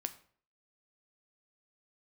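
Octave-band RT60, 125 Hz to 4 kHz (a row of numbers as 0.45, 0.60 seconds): 0.55, 0.55, 0.55, 0.50, 0.45, 0.40 seconds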